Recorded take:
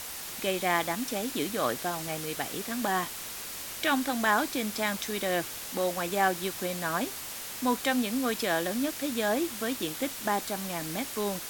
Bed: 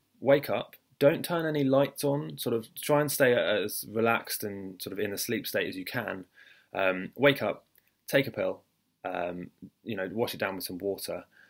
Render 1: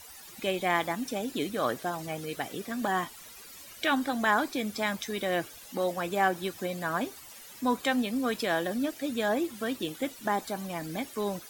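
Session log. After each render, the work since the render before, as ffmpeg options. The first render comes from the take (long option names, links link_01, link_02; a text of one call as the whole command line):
ffmpeg -i in.wav -af "afftdn=noise_reduction=14:noise_floor=-40" out.wav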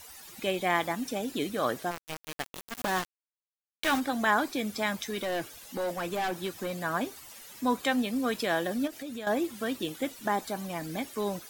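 ffmpeg -i in.wav -filter_complex "[0:a]asplit=3[link_01][link_02][link_03];[link_01]afade=type=out:start_time=1.9:duration=0.02[link_04];[link_02]aeval=exprs='val(0)*gte(abs(val(0)),0.0376)':channel_layout=same,afade=type=in:start_time=1.9:duration=0.02,afade=type=out:start_time=3.99:duration=0.02[link_05];[link_03]afade=type=in:start_time=3.99:duration=0.02[link_06];[link_04][link_05][link_06]amix=inputs=3:normalize=0,asettb=1/sr,asplit=3[link_07][link_08][link_09];[link_07]atrim=end=5.074[link_10];[link_08]atrim=start=5.07:end=6.79,asetpts=PTS-STARTPTS,afade=type=in:duration=0.004:curve=qsin,afade=type=out:start_time=1.716:duration=0.004:curve=qsin,asoftclip=type=hard:threshold=-27.5dB[link_11];[link_09]atrim=start=6.786[link_12];[link_10][link_11]acrossfade=duration=0.004:curve1=hsin:curve2=qsin[link_13];[link_13][link_12]acrossfade=duration=0.004:curve1=qsin:curve2=hsin,asettb=1/sr,asplit=3[link_14][link_15][link_16];[link_14]atrim=end=8.874[link_17];[link_15]atrim=start=8.87:end=9.27,asetpts=PTS-STARTPTS,afade=type=in:duration=0.004:curve=qsin,afade=type=out:start_time=0.396:duration=0.004:curve=qsin,acompressor=threshold=-36dB:ratio=4:attack=3.2:release=140:knee=1:detection=peak[link_18];[link_16]atrim=start=9.266[link_19];[link_17][link_18]acrossfade=duration=0.004:curve1=hsin:curve2=qsin[link_20];[link_20][link_19]acrossfade=duration=0.004:curve1=qsin:curve2=hsin" out.wav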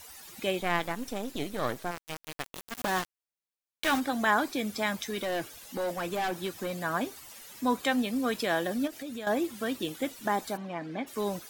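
ffmpeg -i in.wav -filter_complex "[0:a]asettb=1/sr,asplit=3[link_01][link_02][link_03];[link_01]atrim=end=0.614[link_04];[link_02]atrim=start=0.61:end=2.53,asetpts=PTS-STARTPTS,afade=type=in:duration=0.004:curve=qsin,afade=type=out:start_time=1.916:duration=0.004:curve=qsin,aeval=exprs='if(lt(val(0),0),0.251*val(0),val(0))':channel_layout=same[link_05];[link_03]atrim=start=2.526[link_06];[link_04][link_05]acrossfade=duration=0.004:curve1=hsin:curve2=qsin[link_07];[link_07][link_06]acrossfade=duration=0.004:curve1=qsin:curve2=hsin,asplit=3[link_08][link_09][link_10];[link_08]afade=type=out:start_time=10.56:duration=0.02[link_11];[link_09]highpass=170,lowpass=2600,afade=type=in:start_time=10.56:duration=0.02,afade=type=out:start_time=11.06:duration=0.02[link_12];[link_10]afade=type=in:start_time=11.06:duration=0.02[link_13];[link_11][link_12][link_13]amix=inputs=3:normalize=0" out.wav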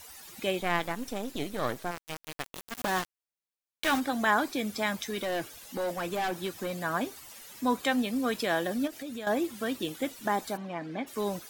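ffmpeg -i in.wav -af anull out.wav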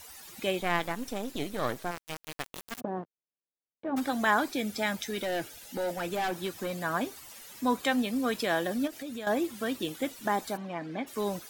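ffmpeg -i in.wav -filter_complex "[0:a]asplit=3[link_01][link_02][link_03];[link_01]afade=type=out:start_time=2.79:duration=0.02[link_04];[link_02]asuperpass=centerf=290:order=4:qfactor=0.59,afade=type=in:start_time=2.79:duration=0.02,afade=type=out:start_time=3.96:duration=0.02[link_05];[link_03]afade=type=in:start_time=3.96:duration=0.02[link_06];[link_04][link_05][link_06]amix=inputs=3:normalize=0,asettb=1/sr,asplit=3[link_07][link_08][link_09];[link_07]atrim=end=4.494[link_10];[link_08]atrim=start=4.49:end=6.2,asetpts=PTS-STARTPTS,afade=type=in:duration=0.004:curve=qsin,afade=type=out:start_time=1.706:duration=0.004:curve=qsin,asuperstop=centerf=1100:order=4:qfactor=6.5[link_11];[link_09]atrim=start=6.196[link_12];[link_10][link_11]acrossfade=duration=0.004:curve1=hsin:curve2=qsin[link_13];[link_13][link_12]acrossfade=duration=0.004:curve1=qsin:curve2=hsin" out.wav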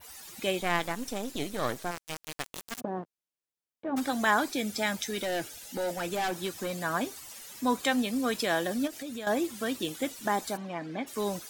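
ffmpeg -i in.wav -af "adynamicequalizer=threshold=0.00282:dfrequency=7300:dqfactor=0.72:tfrequency=7300:tqfactor=0.72:attack=5:release=100:ratio=0.375:range=2.5:mode=boostabove:tftype=bell" out.wav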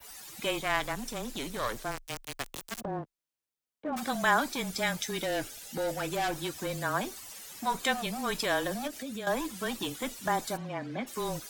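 ffmpeg -i in.wav -filter_complex "[0:a]acrossover=split=490[link_01][link_02];[link_01]aeval=exprs='0.0251*(abs(mod(val(0)/0.0251+3,4)-2)-1)':channel_layout=same[link_03];[link_03][link_02]amix=inputs=2:normalize=0,afreqshift=-21" out.wav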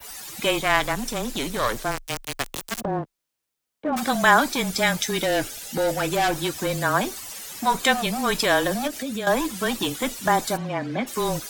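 ffmpeg -i in.wav -af "volume=9dB" out.wav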